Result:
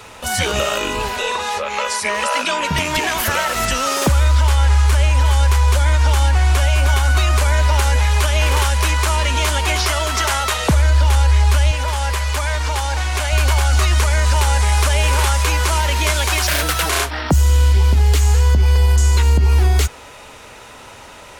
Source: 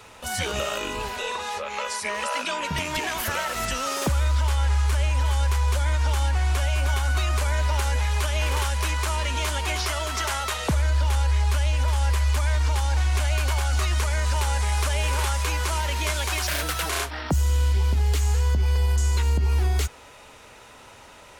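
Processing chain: 11.71–13.33 s: tone controls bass -8 dB, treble -1 dB; trim +8.5 dB

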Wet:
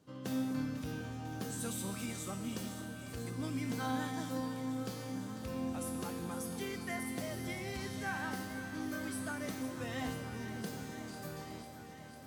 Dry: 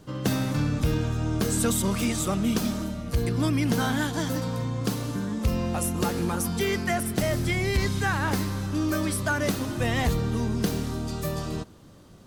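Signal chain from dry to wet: high-pass 100 Hz; feedback comb 260 Hz, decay 1.3 s, mix 90%; on a send: echo whose repeats swap between lows and highs 249 ms, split 800 Hz, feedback 89%, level -11 dB; on the sum: trim +3 dB

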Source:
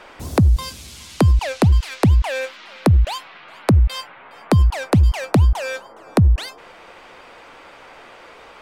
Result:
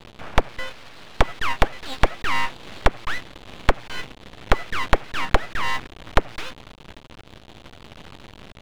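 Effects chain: word length cut 6-bit, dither none; mistuned SSB -52 Hz 320–2400 Hz; full-wave rectifier; trim +6.5 dB

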